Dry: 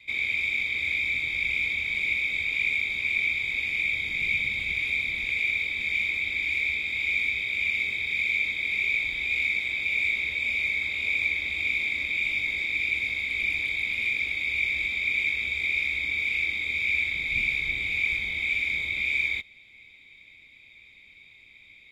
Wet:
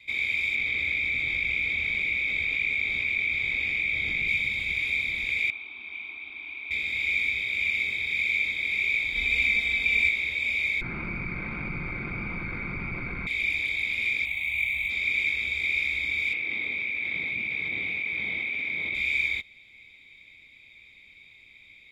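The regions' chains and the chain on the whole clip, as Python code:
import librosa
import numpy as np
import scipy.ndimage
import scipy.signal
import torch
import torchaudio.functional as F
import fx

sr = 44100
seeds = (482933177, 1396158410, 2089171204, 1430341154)

y = fx.chain(x, sr, fx.lowpass(hz=2500.0, slope=6),
    fx.notch(hz=950.0, q=8.9),
    fx.env_flatten(amount_pct=70), at=(0.55, 4.28))
y = fx.chain(y, sr, fx.lowpass(hz=2200.0, slope=24),
    fx.tilt_eq(slope=4.0),
    fx.fixed_phaser(hz=520.0, stages=6), at=(5.5, 6.71))
y = fx.chain(y, sr, fx.low_shelf(hz=120.0, db=9.5),
    fx.comb(ms=4.3, depth=0.94), at=(9.15, 10.09))
y = fx.chain(y, sr, fx.lower_of_two(delay_ms=5.7),
    fx.lowpass(hz=1800.0, slope=24),
    fx.env_flatten(amount_pct=70), at=(10.81, 13.27))
y = fx.chain(y, sr, fx.median_filter(points=5),
    fx.fixed_phaser(hz=1500.0, stages=6), at=(14.25, 14.9))
y = fx.chain(y, sr, fx.highpass(hz=170.0, slope=12),
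    fx.spacing_loss(db_at_10k=32),
    fx.env_flatten(amount_pct=100), at=(16.33, 18.95))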